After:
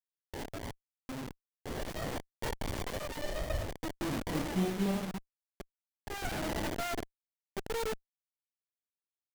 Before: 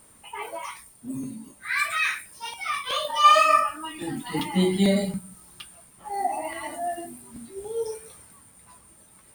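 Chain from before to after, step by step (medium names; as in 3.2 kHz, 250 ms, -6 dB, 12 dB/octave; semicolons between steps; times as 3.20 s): bit crusher 5-bit; gain riding within 4 dB 0.5 s; sliding maximum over 33 samples; trim -8 dB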